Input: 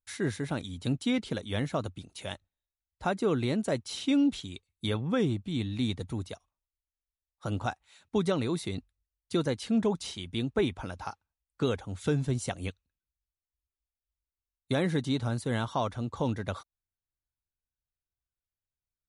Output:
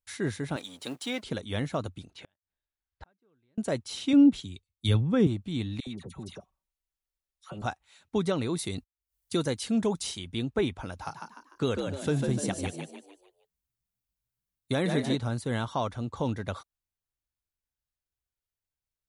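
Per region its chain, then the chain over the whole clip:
0:00.56–0:01.23: mu-law and A-law mismatch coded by mu + high-pass filter 410 Hz
0:02.10–0:03.58: low-pass filter 3,900 Hz + parametric band 1,600 Hz +6.5 dB 0.24 octaves + gate with flip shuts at −34 dBFS, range −42 dB
0:04.13–0:05.27: low-shelf EQ 310 Hz +10 dB + multiband upward and downward expander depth 100%
0:05.80–0:07.62: comb filter 5.3 ms, depth 45% + downward compressor 2.5 to 1, threshold −38 dBFS + all-pass dispersion lows, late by 69 ms, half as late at 1,300 Hz
0:08.58–0:10.19: noise gate −50 dBFS, range −36 dB + high-shelf EQ 6,300 Hz +11.5 dB + upward compression, threshold −48 dBFS
0:10.92–0:15.16: high-shelf EQ 9,200 Hz +6.5 dB + echo with shifted repeats 149 ms, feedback 41%, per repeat +68 Hz, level −5 dB
whole clip: no processing

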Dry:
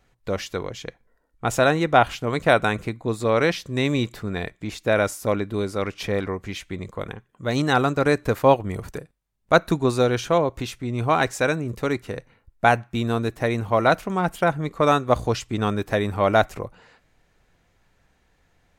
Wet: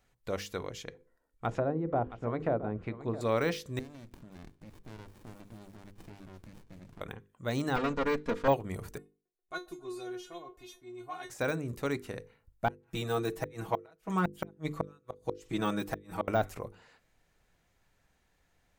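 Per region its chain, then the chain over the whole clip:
0:00.82–0:03.21: hum removal 85.89 Hz, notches 6 + treble cut that deepens with the level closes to 520 Hz, closed at −17 dBFS + single-tap delay 669 ms −14.5 dB
0:03.79–0:07.01: downward compressor 3 to 1, threshold −38 dBFS + delay with a high-pass on its return 174 ms, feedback 70%, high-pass 2,300 Hz, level −13 dB + windowed peak hold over 65 samples
0:07.76–0:08.48: lower of the sound and its delayed copy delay 4.2 ms + high-frequency loss of the air 120 metres + notch filter 740 Hz, Q 6.2
0:08.98–0:11.30: tuned comb filter 360 Hz, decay 0.19 s, mix 100% + delay with a band-pass on its return 135 ms, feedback 67%, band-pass 600 Hz, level −23.5 dB
0:12.68–0:16.28: parametric band 110 Hz −5.5 dB 0.38 octaves + comb filter 6.2 ms, depth 95% + gate with flip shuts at −9 dBFS, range −39 dB
whole clip: mains-hum notches 50/100/150/200/250/300/350/400/450/500 Hz; de-essing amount 85%; high-shelf EQ 7,200 Hz +7.5 dB; level −8 dB

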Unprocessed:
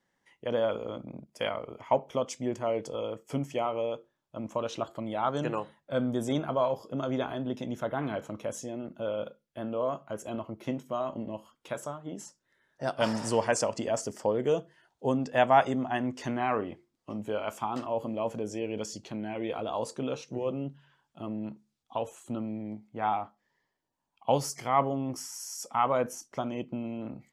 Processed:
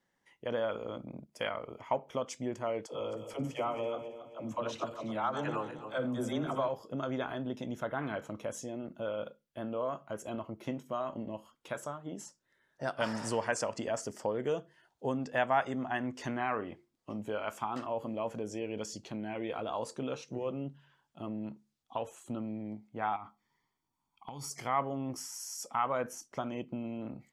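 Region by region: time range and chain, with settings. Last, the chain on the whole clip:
0:02.86–0:06.69: feedback delay that plays each chunk backwards 136 ms, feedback 58%, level −10.5 dB + all-pass dispersion lows, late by 71 ms, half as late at 400 Hz
0:23.16–0:24.51: downward compressor 10 to 1, threshold −37 dBFS + comb filter 0.9 ms, depth 71%
whole clip: dynamic equaliser 1,600 Hz, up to +6 dB, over −45 dBFS, Q 1.3; downward compressor 1.5 to 1, threshold −34 dBFS; level −2 dB

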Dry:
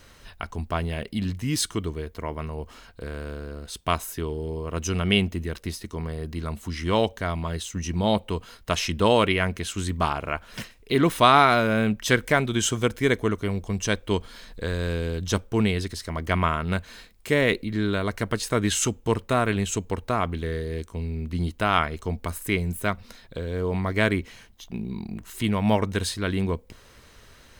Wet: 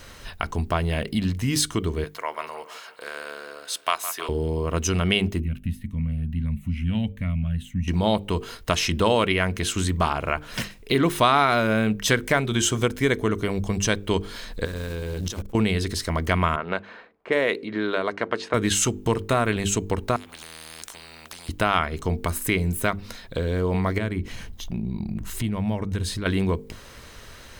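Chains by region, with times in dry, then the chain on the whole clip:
0:02.04–0:04.29: high-pass filter 790 Hz + echo with a time of its own for lows and highs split 2,600 Hz, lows 159 ms, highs 329 ms, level −14 dB
0:05.40–0:07.88: drawn EQ curve 250 Hz 0 dB, 360 Hz −28 dB, 570 Hz −16 dB, 980 Hz −22 dB, 2,500 Hz −5 dB, 5,100 Hz −29 dB, 12,000 Hz −14 dB + phaser whose notches keep moving one way rising 1.6 Hz
0:14.65–0:15.55: one scale factor per block 5 bits + compressor whose output falls as the input rises −35 dBFS + saturating transformer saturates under 230 Hz
0:16.56–0:18.54: high-pass filter 500 Hz + spectral tilt −2.5 dB per octave + low-pass that shuts in the quiet parts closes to 1,200 Hz, open at −21 dBFS
0:20.16–0:21.49: downward compressor 10 to 1, threshold −29 dBFS + every bin compressed towards the loudest bin 10 to 1
0:23.98–0:26.26: low-shelf EQ 240 Hz +12 dB + downward compressor 2 to 1, threshold −38 dBFS
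whole clip: mains-hum notches 50/100/150/200/250/300/350/400/450 Hz; downward compressor 2 to 1, threshold −30 dBFS; level +7.5 dB

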